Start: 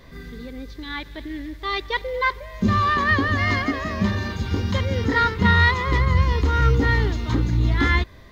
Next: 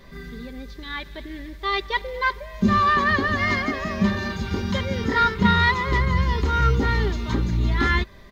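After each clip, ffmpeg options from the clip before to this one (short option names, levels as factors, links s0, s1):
-af "aecho=1:1:5.1:0.46,volume=0.891"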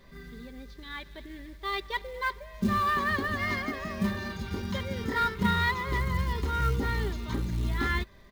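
-af "acrusher=bits=6:mode=log:mix=0:aa=0.000001,volume=0.398"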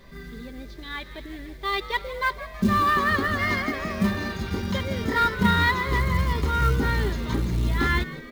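-filter_complex "[0:a]asplit=6[s0][s1][s2][s3][s4][s5];[s1]adelay=163,afreqshift=90,volume=0.168[s6];[s2]adelay=326,afreqshift=180,volume=0.0902[s7];[s3]adelay=489,afreqshift=270,volume=0.049[s8];[s4]adelay=652,afreqshift=360,volume=0.0263[s9];[s5]adelay=815,afreqshift=450,volume=0.0143[s10];[s0][s6][s7][s8][s9][s10]amix=inputs=6:normalize=0,volume=1.88"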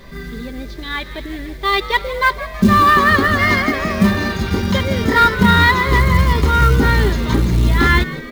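-af "alimiter=level_in=3.55:limit=0.891:release=50:level=0:latency=1,volume=0.891"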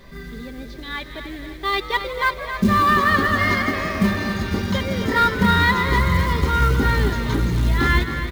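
-af "aecho=1:1:270|540|810|1080|1350|1620:0.335|0.171|0.0871|0.0444|0.0227|0.0116,volume=0.531"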